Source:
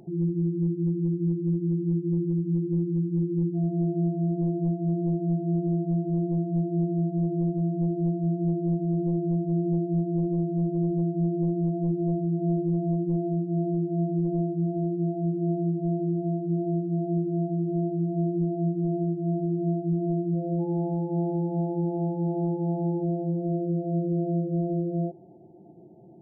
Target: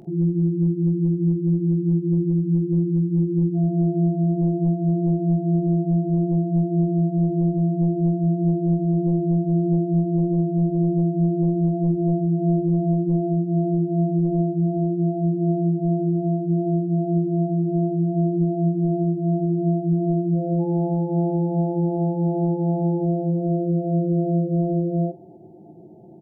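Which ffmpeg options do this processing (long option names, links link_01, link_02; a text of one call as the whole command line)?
ffmpeg -i in.wav -af "acontrast=26,aecho=1:1:19|46:0.299|0.2" out.wav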